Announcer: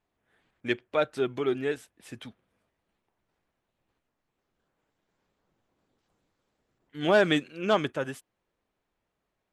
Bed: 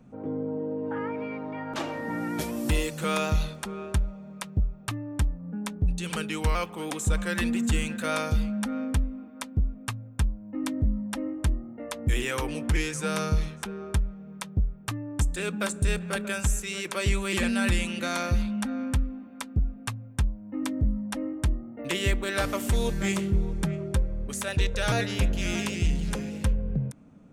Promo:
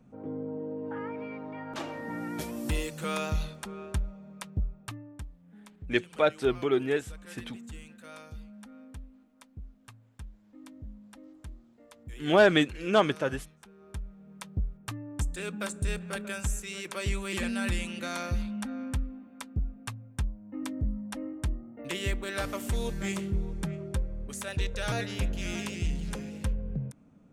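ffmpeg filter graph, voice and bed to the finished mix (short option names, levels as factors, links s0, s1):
-filter_complex "[0:a]adelay=5250,volume=1.19[s0];[1:a]volume=2.66,afade=t=out:st=4.68:d=0.6:silence=0.199526,afade=t=in:st=13.76:d=0.78:silence=0.211349[s1];[s0][s1]amix=inputs=2:normalize=0"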